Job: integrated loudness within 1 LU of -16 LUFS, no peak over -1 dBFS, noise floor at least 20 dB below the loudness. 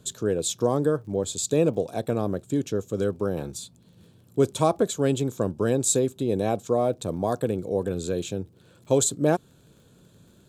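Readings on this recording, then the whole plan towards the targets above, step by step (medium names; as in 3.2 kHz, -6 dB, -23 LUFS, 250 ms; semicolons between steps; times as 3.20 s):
tick rate 29 per s; loudness -25.5 LUFS; peak level -7.0 dBFS; loudness target -16.0 LUFS
-> de-click; trim +9.5 dB; peak limiter -1 dBFS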